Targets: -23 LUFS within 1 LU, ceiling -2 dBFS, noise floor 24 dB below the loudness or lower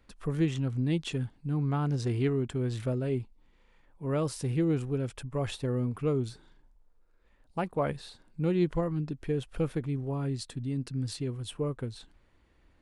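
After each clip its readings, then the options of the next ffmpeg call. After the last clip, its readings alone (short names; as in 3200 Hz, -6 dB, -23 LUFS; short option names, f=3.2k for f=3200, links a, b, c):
loudness -32.0 LUFS; peak -16.5 dBFS; loudness target -23.0 LUFS
-> -af "volume=9dB"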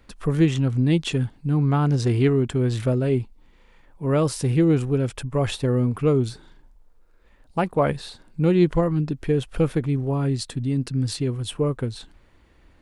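loudness -23.0 LUFS; peak -7.5 dBFS; noise floor -55 dBFS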